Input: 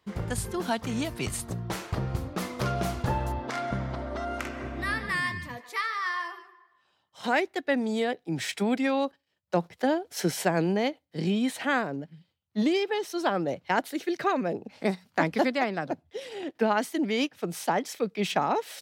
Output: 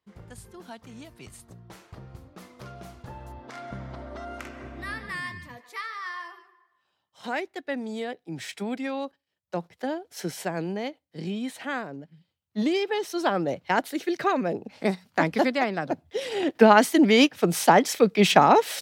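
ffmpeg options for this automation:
ffmpeg -i in.wav -af "volume=9.5dB,afade=type=in:start_time=3.12:duration=0.89:silence=0.354813,afade=type=in:start_time=12.07:duration=0.97:silence=0.446684,afade=type=in:start_time=15.85:duration=0.55:silence=0.421697" out.wav

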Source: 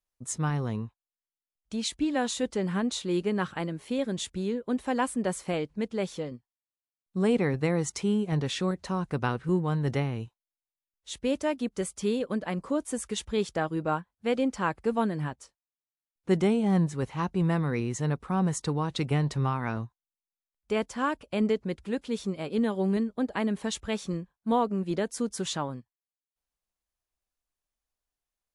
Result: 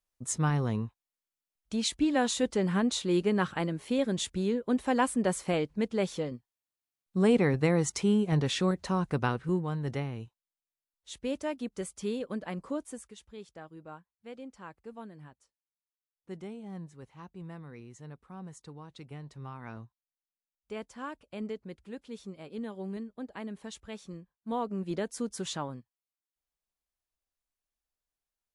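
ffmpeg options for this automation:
ffmpeg -i in.wav -af "volume=15dB,afade=type=out:start_time=9.05:duration=0.67:silence=0.473151,afade=type=out:start_time=12.72:duration=0.42:silence=0.237137,afade=type=in:start_time=19.33:duration=0.4:silence=0.473151,afade=type=in:start_time=24.37:duration=0.48:silence=0.421697" out.wav

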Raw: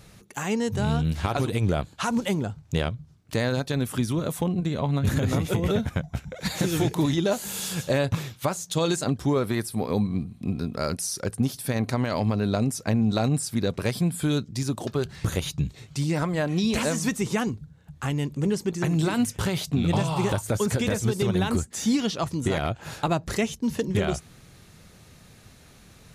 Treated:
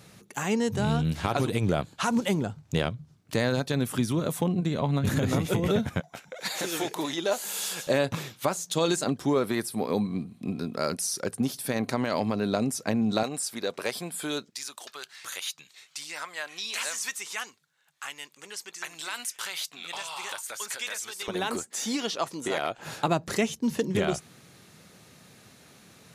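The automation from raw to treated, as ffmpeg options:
ffmpeg -i in.wav -af "asetnsamples=nb_out_samples=441:pad=0,asendcmd='6 highpass f 470;7.87 highpass f 200;13.23 highpass f 460;14.5 highpass f 1400;21.28 highpass f 400;22.78 highpass f 160',highpass=120" out.wav

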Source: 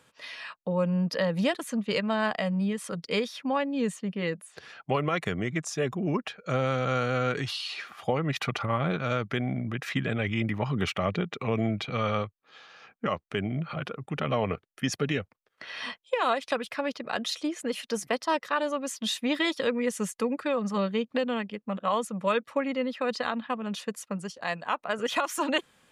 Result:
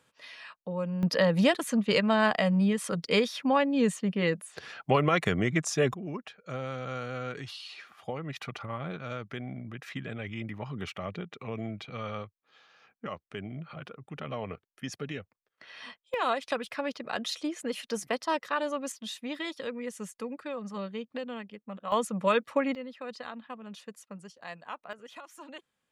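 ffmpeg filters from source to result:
ffmpeg -i in.wav -af "asetnsamples=nb_out_samples=441:pad=0,asendcmd='1.03 volume volume 3dB;5.94 volume volume -9dB;16.14 volume volume -2.5dB;18.92 volume volume -9dB;21.92 volume volume 1dB;22.75 volume volume -11dB;24.93 volume volume -19dB',volume=-6dB" out.wav

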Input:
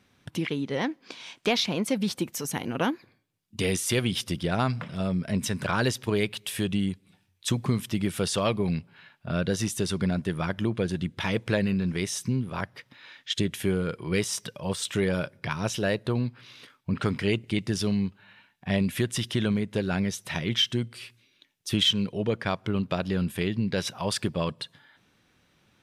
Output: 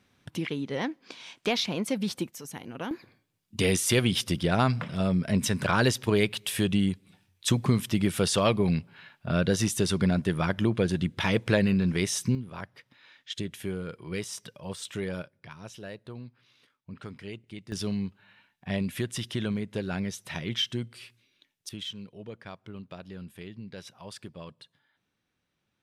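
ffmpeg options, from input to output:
ffmpeg -i in.wav -af "asetnsamples=nb_out_samples=441:pad=0,asendcmd='2.27 volume volume -9.5dB;2.91 volume volume 2dB;12.35 volume volume -7.5dB;15.22 volume volume -15dB;17.72 volume volume -4.5dB;21.69 volume volume -15dB',volume=-2.5dB" out.wav

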